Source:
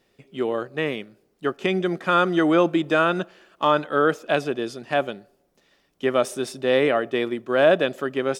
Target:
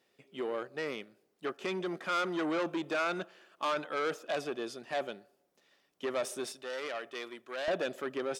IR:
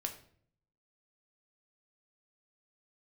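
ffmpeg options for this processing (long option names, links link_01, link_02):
-af "asoftclip=type=tanh:threshold=-20dB,asetnsamples=nb_out_samples=441:pad=0,asendcmd='6.52 highpass f 1400;7.68 highpass f 270',highpass=frequency=350:poles=1,volume=-6dB"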